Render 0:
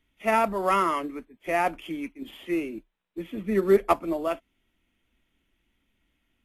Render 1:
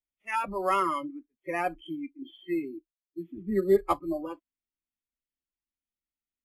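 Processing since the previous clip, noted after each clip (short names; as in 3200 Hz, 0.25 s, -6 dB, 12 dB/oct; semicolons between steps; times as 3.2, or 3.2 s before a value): spectral noise reduction 27 dB; gain -2.5 dB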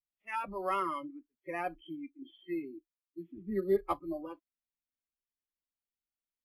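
bell 7500 Hz -13 dB 0.63 oct; gain -6.5 dB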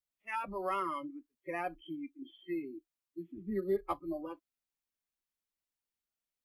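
compressor 1.5:1, threshold -37 dBFS, peak gain reduction 5.5 dB; gain +1 dB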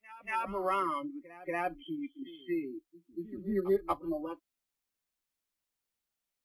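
pre-echo 0.236 s -17.5 dB; gain +3.5 dB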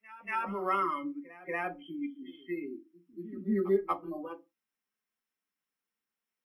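reverb RT60 0.25 s, pre-delay 3 ms, DRR 6 dB; gain -5.5 dB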